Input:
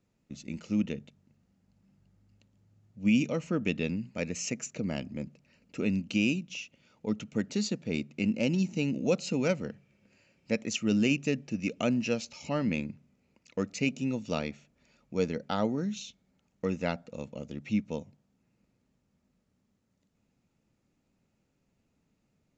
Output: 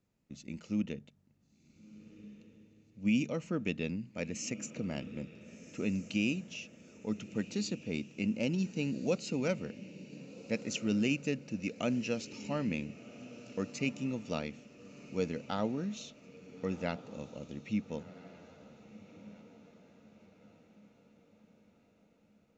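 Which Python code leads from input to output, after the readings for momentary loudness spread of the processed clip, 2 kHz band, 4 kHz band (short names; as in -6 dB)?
20 LU, -4.5 dB, -4.5 dB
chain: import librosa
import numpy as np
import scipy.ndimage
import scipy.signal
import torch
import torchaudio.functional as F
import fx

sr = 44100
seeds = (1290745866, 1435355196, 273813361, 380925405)

y = fx.echo_diffused(x, sr, ms=1430, feedback_pct=47, wet_db=-15.5)
y = F.gain(torch.from_numpy(y), -4.5).numpy()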